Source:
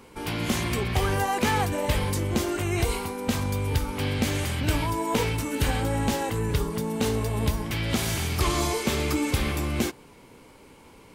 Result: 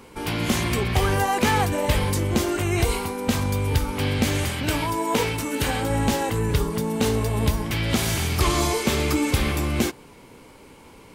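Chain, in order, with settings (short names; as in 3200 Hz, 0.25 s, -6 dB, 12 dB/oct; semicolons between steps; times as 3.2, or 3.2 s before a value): 4.49–5.9 low shelf 110 Hz -10 dB; gain +3.5 dB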